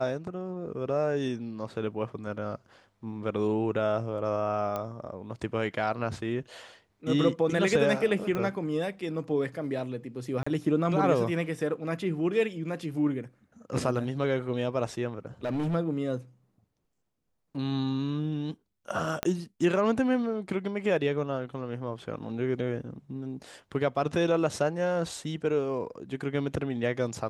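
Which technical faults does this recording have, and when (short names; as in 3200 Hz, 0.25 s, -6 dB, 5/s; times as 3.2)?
4.76 pop -19 dBFS
8.35 pop -19 dBFS
10.43–10.46 gap 35 ms
15.44–15.75 clipped -26 dBFS
19.23 pop -12 dBFS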